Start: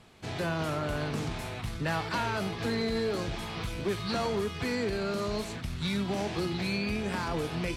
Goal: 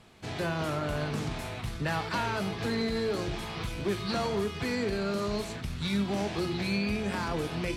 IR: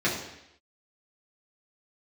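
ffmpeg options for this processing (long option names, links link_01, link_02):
-filter_complex "[0:a]asplit=2[link_01][link_02];[1:a]atrim=start_sample=2205,adelay=10[link_03];[link_02][link_03]afir=irnorm=-1:irlink=0,volume=-26dB[link_04];[link_01][link_04]amix=inputs=2:normalize=0"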